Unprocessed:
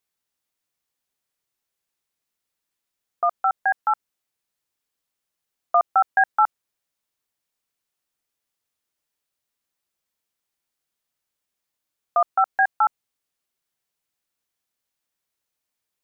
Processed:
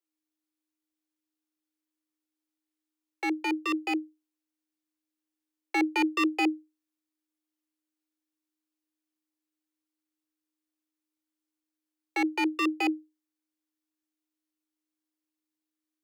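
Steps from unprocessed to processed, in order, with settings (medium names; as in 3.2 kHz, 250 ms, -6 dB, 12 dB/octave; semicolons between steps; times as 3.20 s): full-wave rectifier; frequency shift +310 Hz; trim -6.5 dB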